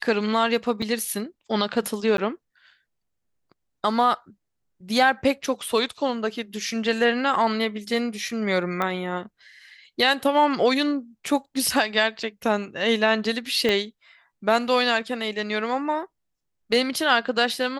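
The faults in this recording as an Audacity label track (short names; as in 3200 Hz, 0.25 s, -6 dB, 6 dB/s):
0.820000	0.820000	gap 4.1 ms
2.170000	2.180000	gap 12 ms
8.820000	8.820000	pop -13 dBFS
13.690000	13.690000	pop -10 dBFS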